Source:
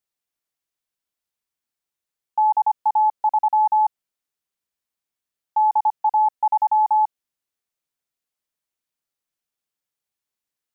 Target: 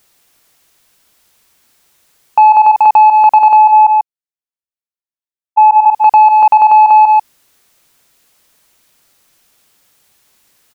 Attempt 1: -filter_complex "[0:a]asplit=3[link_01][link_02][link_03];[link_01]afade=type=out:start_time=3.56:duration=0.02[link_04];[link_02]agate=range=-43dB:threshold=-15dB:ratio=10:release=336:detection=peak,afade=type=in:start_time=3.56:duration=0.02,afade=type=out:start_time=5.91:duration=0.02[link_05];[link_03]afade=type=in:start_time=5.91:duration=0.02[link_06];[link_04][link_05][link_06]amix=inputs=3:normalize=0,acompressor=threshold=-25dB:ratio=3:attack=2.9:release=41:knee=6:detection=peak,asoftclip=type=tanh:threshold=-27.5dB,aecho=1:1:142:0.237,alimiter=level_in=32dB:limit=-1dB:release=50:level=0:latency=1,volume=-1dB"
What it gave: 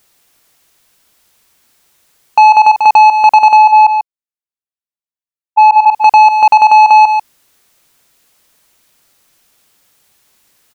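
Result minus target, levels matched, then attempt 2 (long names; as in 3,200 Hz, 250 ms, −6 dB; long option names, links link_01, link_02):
soft clipping: distortion +9 dB
-filter_complex "[0:a]asplit=3[link_01][link_02][link_03];[link_01]afade=type=out:start_time=3.56:duration=0.02[link_04];[link_02]agate=range=-43dB:threshold=-15dB:ratio=10:release=336:detection=peak,afade=type=in:start_time=3.56:duration=0.02,afade=type=out:start_time=5.91:duration=0.02[link_05];[link_03]afade=type=in:start_time=5.91:duration=0.02[link_06];[link_04][link_05][link_06]amix=inputs=3:normalize=0,acompressor=threshold=-25dB:ratio=3:attack=2.9:release=41:knee=6:detection=peak,asoftclip=type=tanh:threshold=-20.5dB,aecho=1:1:142:0.237,alimiter=level_in=32dB:limit=-1dB:release=50:level=0:latency=1,volume=-1dB"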